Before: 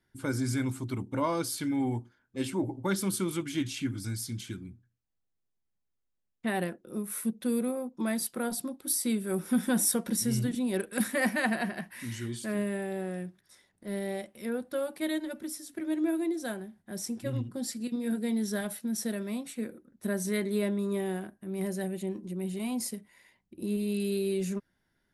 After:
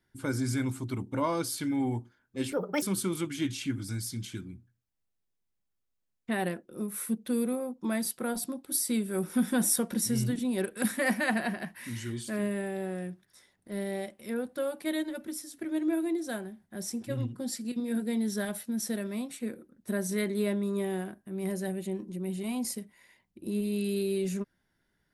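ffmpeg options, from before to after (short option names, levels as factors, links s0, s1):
-filter_complex "[0:a]asplit=3[s0][s1][s2];[s0]atrim=end=2.524[s3];[s1]atrim=start=2.52:end=2.98,asetpts=PTS-STARTPTS,asetrate=67032,aresample=44100,atrim=end_sample=13346,asetpts=PTS-STARTPTS[s4];[s2]atrim=start=2.976[s5];[s3][s4]acrossfade=d=0.004:c1=hsin:c2=hsin[s6];[s6][s5]acrossfade=d=0.004:c1=hsin:c2=hsin"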